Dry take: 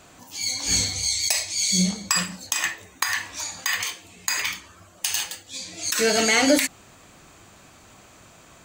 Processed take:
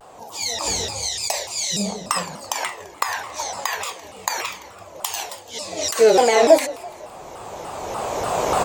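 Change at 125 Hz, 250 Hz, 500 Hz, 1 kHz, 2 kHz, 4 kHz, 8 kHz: -3.0, -2.0, +10.5, +10.0, -2.5, -2.0, -2.0 dB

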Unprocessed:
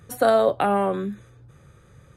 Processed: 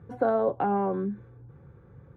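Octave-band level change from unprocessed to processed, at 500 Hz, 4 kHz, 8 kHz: -6.0 dB, under -20 dB, n/a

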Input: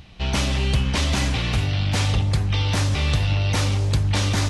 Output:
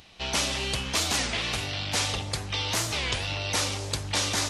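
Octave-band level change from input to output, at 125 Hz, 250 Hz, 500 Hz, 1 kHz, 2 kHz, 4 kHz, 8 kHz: -15.0, -9.5, -3.5, -2.5, -2.0, 0.0, +3.0 dB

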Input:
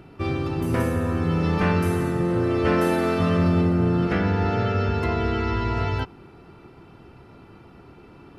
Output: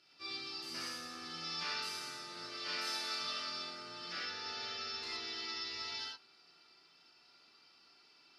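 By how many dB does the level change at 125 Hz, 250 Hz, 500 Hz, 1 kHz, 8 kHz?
under -40 dB, -32.0 dB, -28.5 dB, -17.5 dB, n/a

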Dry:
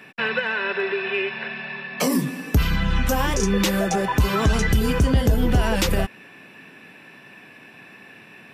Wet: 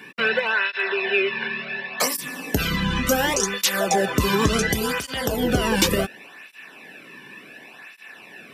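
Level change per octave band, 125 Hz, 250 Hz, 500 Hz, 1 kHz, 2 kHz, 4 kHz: -6.5, -2.5, +1.5, +1.0, +2.5, +4.0 dB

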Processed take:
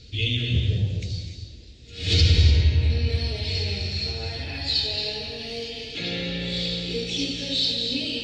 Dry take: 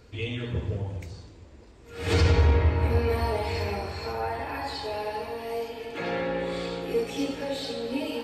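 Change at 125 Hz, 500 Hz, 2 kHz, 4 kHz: +4.5, -6.0, +2.0, +14.0 dB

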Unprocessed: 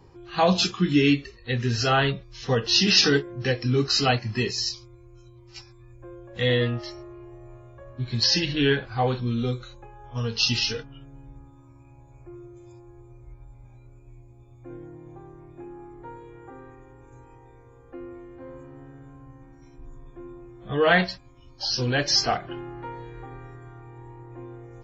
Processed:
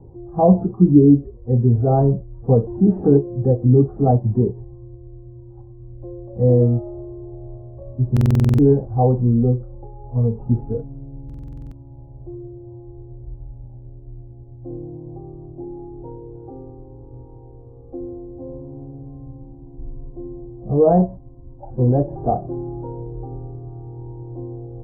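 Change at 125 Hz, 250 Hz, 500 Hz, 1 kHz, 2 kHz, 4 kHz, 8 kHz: +11.0 dB, +9.5 dB, +7.0 dB, +2.5 dB, under -20 dB, under -30 dB, n/a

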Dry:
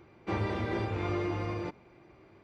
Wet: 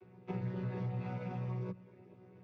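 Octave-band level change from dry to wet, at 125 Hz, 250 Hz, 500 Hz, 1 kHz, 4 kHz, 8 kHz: -2.5 dB, -6.0 dB, -10.0 dB, -11.0 dB, under -15 dB, n/a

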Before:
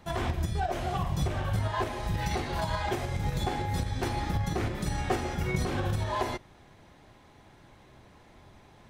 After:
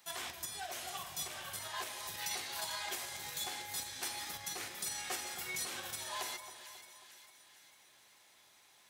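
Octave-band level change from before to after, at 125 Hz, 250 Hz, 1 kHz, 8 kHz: -30.0, -22.5, -12.0, +5.5 dB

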